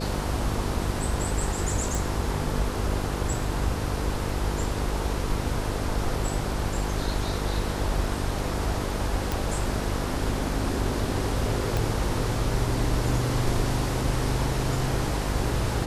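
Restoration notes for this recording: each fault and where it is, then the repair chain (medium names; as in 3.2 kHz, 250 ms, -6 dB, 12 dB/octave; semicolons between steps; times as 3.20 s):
buzz 50 Hz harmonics 10 -31 dBFS
1.95 s: pop
9.32 s: pop
11.77 s: pop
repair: de-click; de-hum 50 Hz, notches 10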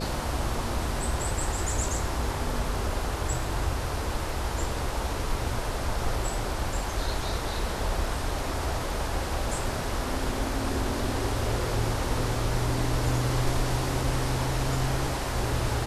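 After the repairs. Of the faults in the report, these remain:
11.77 s: pop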